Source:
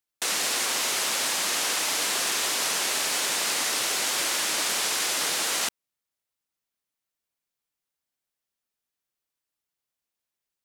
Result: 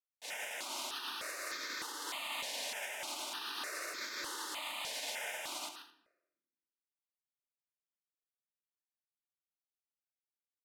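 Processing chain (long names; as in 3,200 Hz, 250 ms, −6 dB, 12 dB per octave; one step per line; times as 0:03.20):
high-pass filter 170 Hz
high-shelf EQ 6,600 Hz +7 dB
on a send: multi-tap delay 132/174/215 ms −10/−16/−13.5 dB
on the sum: brickwall limiter −18.5 dBFS, peak gain reduction 9 dB
downward expander −15 dBFS
three-way crossover with the lows and the highs turned down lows −23 dB, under 220 Hz, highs −14 dB, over 4,200 Hz
comb filter 3.3 ms, depth 30%
rectangular room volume 320 cubic metres, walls mixed, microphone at 0.41 metres
step-sequenced phaser 3.3 Hz 350–2,900 Hz
level +14 dB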